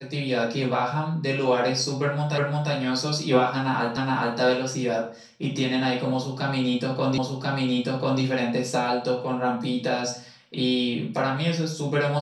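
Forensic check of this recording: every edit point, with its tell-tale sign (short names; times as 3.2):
2.38 repeat of the last 0.35 s
3.97 repeat of the last 0.42 s
7.18 repeat of the last 1.04 s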